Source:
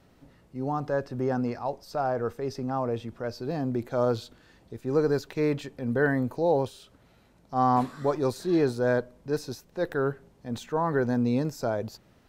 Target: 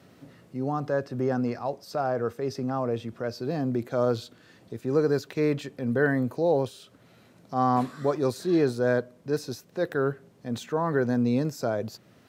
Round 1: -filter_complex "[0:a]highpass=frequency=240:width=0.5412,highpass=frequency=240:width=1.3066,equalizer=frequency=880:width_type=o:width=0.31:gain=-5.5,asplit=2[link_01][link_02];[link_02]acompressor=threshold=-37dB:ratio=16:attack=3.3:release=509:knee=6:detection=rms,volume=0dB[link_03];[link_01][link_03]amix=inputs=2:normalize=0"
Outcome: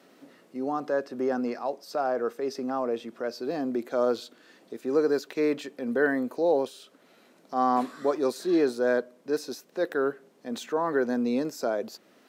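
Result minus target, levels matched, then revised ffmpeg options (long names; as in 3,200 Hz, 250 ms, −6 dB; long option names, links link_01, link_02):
125 Hz band −17.0 dB
-filter_complex "[0:a]highpass=frequency=98:width=0.5412,highpass=frequency=98:width=1.3066,equalizer=frequency=880:width_type=o:width=0.31:gain=-5.5,asplit=2[link_01][link_02];[link_02]acompressor=threshold=-37dB:ratio=16:attack=3.3:release=509:knee=6:detection=rms,volume=0dB[link_03];[link_01][link_03]amix=inputs=2:normalize=0"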